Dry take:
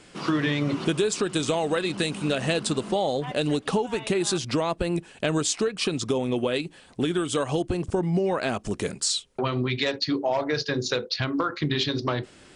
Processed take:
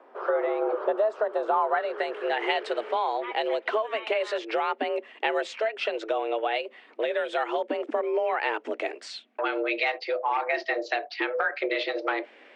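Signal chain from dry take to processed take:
frequency shifter +220 Hz
low-pass filter sweep 1,100 Hz → 2,300 Hz, 0:01.42–0:02.52
level −3 dB

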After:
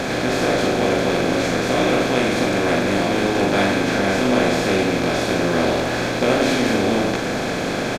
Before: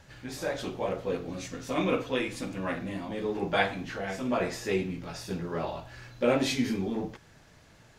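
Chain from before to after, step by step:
compressor on every frequency bin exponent 0.2
low-shelf EQ 89 Hz +7.5 dB
double-tracking delay 40 ms −5 dB

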